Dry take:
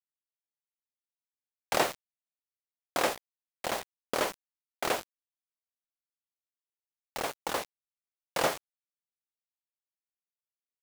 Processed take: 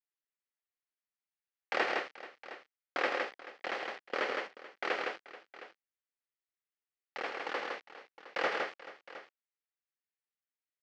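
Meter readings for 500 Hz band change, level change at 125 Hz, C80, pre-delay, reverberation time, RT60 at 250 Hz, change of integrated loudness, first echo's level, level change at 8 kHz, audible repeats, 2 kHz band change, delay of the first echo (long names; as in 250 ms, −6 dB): −3.5 dB, below −15 dB, no reverb audible, no reverb audible, no reverb audible, no reverb audible, −3.5 dB, −8.5 dB, −19.5 dB, 4, +2.0 dB, 102 ms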